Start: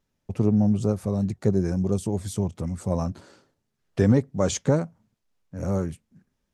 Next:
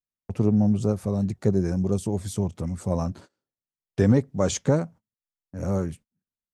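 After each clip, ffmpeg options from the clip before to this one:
-af "agate=range=-27dB:threshold=-43dB:ratio=16:detection=peak"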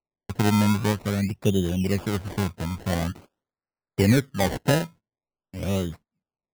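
-af "acrusher=samples=26:mix=1:aa=0.000001:lfo=1:lforange=26:lforate=0.47"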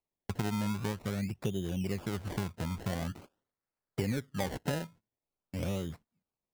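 -af "acompressor=threshold=-32dB:ratio=4"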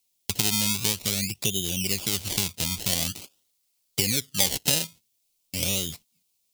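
-af "aexciter=amount=10.2:drive=3.4:freq=2.4k,volume=1.5dB"

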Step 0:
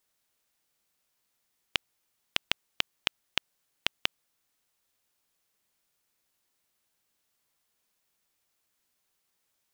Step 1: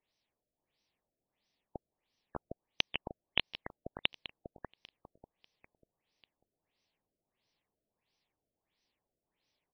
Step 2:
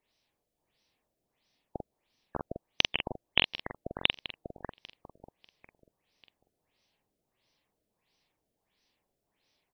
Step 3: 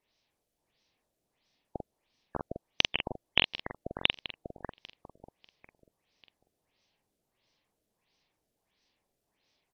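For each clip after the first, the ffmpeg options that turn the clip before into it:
-af "equalizer=f=1.4k:w=2.5:g=-13.5,aecho=1:1:593|1186|1779|2372:0.668|0.194|0.0562|0.0163,afftfilt=real='re*lt(b*sr/1024,680*pow(6300/680,0.5+0.5*sin(2*PI*1.5*pts/sr)))':imag='im*lt(b*sr/1024,680*pow(6300/680,0.5+0.5*sin(2*PI*1.5*pts/sr)))':win_size=1024:overlap=0.75"
-filter_complex "[0:a]asplit=2[a][b];[b]adelay=45,volume=-4dB[c];[a][c]amix=inputs=2:normalize=0,volume=5dB"
-ar 48000 -c:a sbc -b:a 128k

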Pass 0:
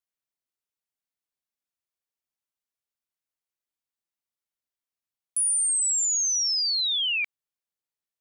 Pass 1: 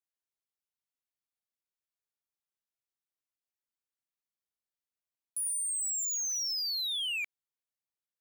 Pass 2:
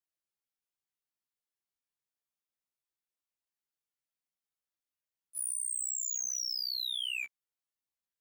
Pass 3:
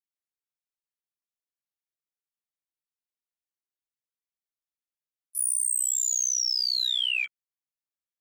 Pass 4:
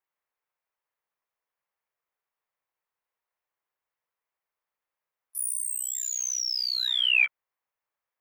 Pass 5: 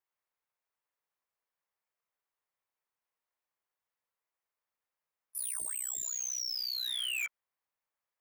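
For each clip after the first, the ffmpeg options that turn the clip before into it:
-af "asoftclip=type=hard:threshold=-25dB,volume=-6.5dB"
-af "afftfilt=real='re*1.73*eq(mod(b,3),0)':imag='im*1.73*eq(mod(b,3),0)':win_size=2048:overlap=0.75"
-filter_complex "[0:a]afwtdn=0.00282,acrossover=split=350|800|1900[a][b][c][d];[b]acrusher=samples=27:mix=1:aa=0.000001[e];[a][e][c][d]amix=inputs=4:normalize=0,volume=9dB"
-af "equalizer=f=250:t=o:w=1:g=-6,equalizer=f=500:t=o:w=1:g=8,equalizer=f=1k:t=o:w=1:g=11,equalizer=f=2k:t=o:w=1:g=7,equalizer=f=4k:t=o:w=1:g=-4,equalizer=f=8k:t=o:w=1:g=-8,volume=2.5dB"
-af "asoftclip=type=hard:threshold=-28.5dB,volume=-3.5dB"

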